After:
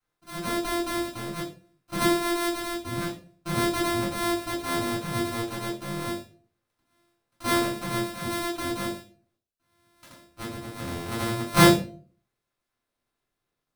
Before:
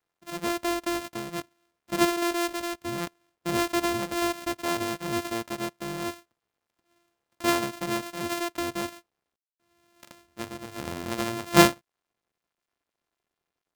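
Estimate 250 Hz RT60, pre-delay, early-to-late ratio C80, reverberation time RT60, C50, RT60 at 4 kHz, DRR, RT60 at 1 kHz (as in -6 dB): 0.55 s, 3 ms, 12.0 dB, 0.40 s, 8.0 dB, 0.35 s, -6.5 dB, 0.35 s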